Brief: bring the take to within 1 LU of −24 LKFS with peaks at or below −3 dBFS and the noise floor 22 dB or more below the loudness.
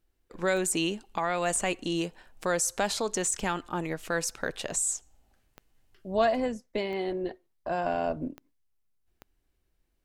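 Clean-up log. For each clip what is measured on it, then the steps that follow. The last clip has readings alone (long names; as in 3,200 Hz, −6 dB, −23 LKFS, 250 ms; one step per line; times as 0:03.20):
number of clicks 6; integrated loudness −30.0 LKFS; sample peak −14.5 dBFS; target loudness −24.0 LKFS
→ click removal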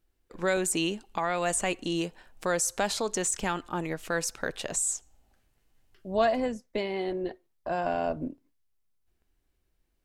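number of clicks 0; integrated loudness −30.0 LKFS; sample peak −14.5 dBFS; target loudness −24.0 LKFS
→ level +6 dB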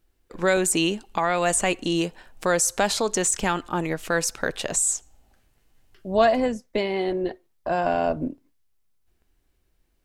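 integrated loudness −24.0 LKFS; sample peak −8.5 dBFS; background noise floor −68 dBFS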